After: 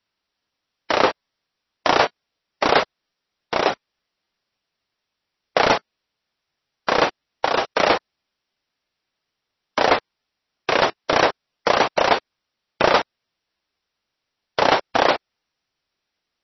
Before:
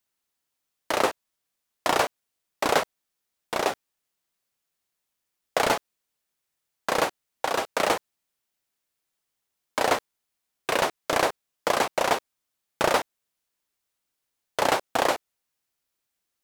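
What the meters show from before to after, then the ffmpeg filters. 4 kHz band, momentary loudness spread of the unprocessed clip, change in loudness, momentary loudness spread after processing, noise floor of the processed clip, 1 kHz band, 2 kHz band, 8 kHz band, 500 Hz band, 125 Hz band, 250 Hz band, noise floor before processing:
+6.5 dB, 9 LU, +6.0 dB, 9 LU, −81 dBFS, +6.0 dB, +6.5 dB, −4.0 dB, +6.0 dB, +6.0 dB, +6.0 dB, −82 dBFS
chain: -af "volume=6.5dB" -ar 22050 -c:a libmp3lame -b:a 24k

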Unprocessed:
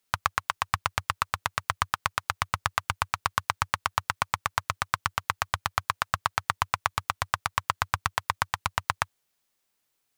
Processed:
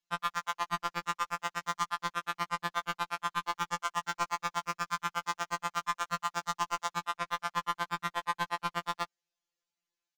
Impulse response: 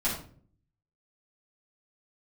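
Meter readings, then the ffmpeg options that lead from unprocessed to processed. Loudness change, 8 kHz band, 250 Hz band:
−5.0 dB, −6.0 dB, +1.5 dB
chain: -af "aresample=16000,aeval=exprs='0.668*sin(PI/2*2*val(0)/0.668)':channel_layout=same,aresample=44100,aeval=exprs='0.794*(cos(1*acos(clip(val(0)/0.794,-1,1)))-cos(1*PI/2))+0.0794*(cos(7*acos(clip(val(0)/0.794,-1,1)))-cos(7*PI/2))':channel_layout=same,afftfilt=real='re*2.83*eq(mod(b,8),0)':imag='im*2.83*eq(mod(b,8),0)':win_size=2048:overlap=0.75,volume=-8.5dB"

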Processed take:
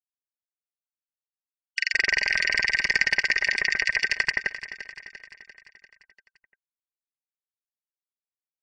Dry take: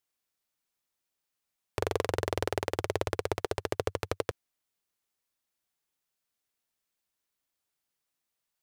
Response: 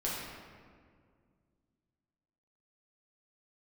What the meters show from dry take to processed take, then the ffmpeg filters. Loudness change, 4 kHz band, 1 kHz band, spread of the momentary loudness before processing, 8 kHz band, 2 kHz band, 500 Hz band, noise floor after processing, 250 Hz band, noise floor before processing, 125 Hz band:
+10.5 dB, +14.0 dB, −5.5 dB, 4 LU, +8.0 dB, +21.0 dB, −11.5 dB, below −85 dBFS, −8.5 dB, −85 dBFS, below −10 dB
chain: -filter_complex "[0:a]afftfilt=real='real(if(lt(b,272),68*(eq(floor(b/68),0)*2+eq(floor(b/68),1)*0+eq(floor(b/68),2)*3+eq(floor(b/68),3)*1)+mod(b,68),b),0)':imag='imag(if(lt(b,272),68*(eq(floor(b/68),0)*2+eq(floor(b/68),1)*0+eq(floor(b/68),2)*3+eq(floor(b/68),3)*1)+mod(b,68),b),0)':win_size=2048:overlap=0.75,dynaudnorm=framelen=250:gausssize=7:maxgain=16dB,equalizer=frequency=220:width_type=o:width=0.57:gain=-5.5,aecho=1:1:4.9:0.51,acrossover=split=2000[link_01][link_02];[link_01]adelay=170[link_03];[link_03][link_02]amix=inputs=2:normalize=0,afftfilt=real='re*gte(hypot(re,im),0.0316)':imag='im*gte(hypot(re,im),0.0316)':win_size=1024:overlap=0.75,asplit=2[link_04][link_05];[link_05]aecho=0:1:345|690|1035|1380|1725|2070:0.211|0.118|0.0663|0.0371|0.0208|0.0116[link_06];[link_04][link_06]amix=inputs=2:normalize=0"

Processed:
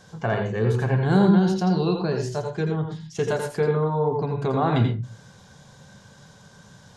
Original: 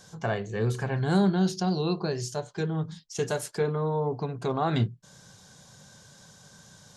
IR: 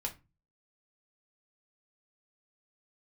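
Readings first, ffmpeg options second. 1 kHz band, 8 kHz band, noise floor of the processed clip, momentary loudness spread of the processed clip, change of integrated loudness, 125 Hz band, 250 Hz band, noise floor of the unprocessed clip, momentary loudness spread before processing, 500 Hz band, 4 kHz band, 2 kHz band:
+5.0 dB, −3.5 dB, −51 dBFS, 10 LU, +5.5 dB, +6.0 dB, +6.0 dB, −54 dBFS, 8 LU, +5.5 dB, +0.5 dB, +4.5 dB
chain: -filter_complex "[0:a]bass=frequency=250:gain=1,treble=frequency=4000:gain=-9,asplit=2[link_01][link_02];[1:a]atrim=start_sample=2205,adelay=83[link_03];[link_02][link_03]afir=irnorm=-1:irlink=0,volume=-5dB[link_04];[link_01][link_04]amix=inputs=2:normalize=0,volume=3.5dB"

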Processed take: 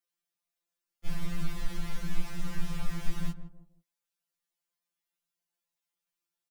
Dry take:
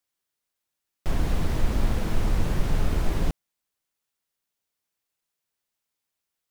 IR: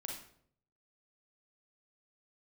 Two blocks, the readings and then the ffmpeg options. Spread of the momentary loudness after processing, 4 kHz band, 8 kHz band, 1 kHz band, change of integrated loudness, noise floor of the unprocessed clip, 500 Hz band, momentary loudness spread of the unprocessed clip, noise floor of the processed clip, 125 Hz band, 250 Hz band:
6 LU, −6.0 dB, −6.0 dB, −11.5 dB, −11.0 dB, −84 dBFS, −16.5 dB, 5 LU, below −85 dBFS, −11.0 dB, −7.5 dB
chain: -filter_complex "[0:a]asplit=2[link_01][link_02];[link_02]adelay=163,lowpass=frequency=900:poles=1,volume=-12dB,asplit=2[link_03][link_04];[link_04]adelay=163,lowpass=frequency=900:poles=1,volume=0.27,asplit=2[link_05][link_06];[link_06]adelay=163,lowpass=frequency=900:poles=1,volume=0.27[link_07];[link_01][link_03][link_05][link_07]amix=inputs=4:normalize=0,acrossover=split=230|1100|2000[link_08][link_09][link_10][link_11];[link_09]acompressor=threshold=-51dB:ratio=5[link_12];[link_08][link_12][link_10][link_11]amix=inputs=4:normalize=0,afftfilt=real='re*2.83*eq(mod(b,8),0)':imag='im*2.83*eq(mod(b,8),0)':win_size=2048:overlap=0.75,volume=-3.5dB"

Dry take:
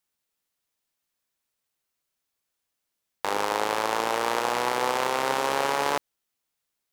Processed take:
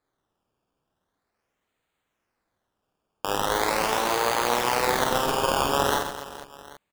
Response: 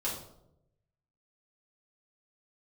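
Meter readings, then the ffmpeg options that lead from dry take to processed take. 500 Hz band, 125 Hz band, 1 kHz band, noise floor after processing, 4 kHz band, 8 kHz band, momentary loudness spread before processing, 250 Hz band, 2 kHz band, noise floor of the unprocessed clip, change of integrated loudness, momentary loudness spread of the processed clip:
+2.0 dB, +8.5 dB, +1.5 dB, −81 dBFS, +4.0 dB, +5.0 dB, 3 LU, +4.0 dB, +1.5 dB, −82 dBFS, +2.0 dB, 11 LU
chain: -af "acrusher=samples=15:mix=1:aa=0.000001:lfo=1:lforange=15:lforate=0.41,aecho=1:1:50|130|258|462.8|790.5:0.631|0.398|0.251|0.158|0.1"

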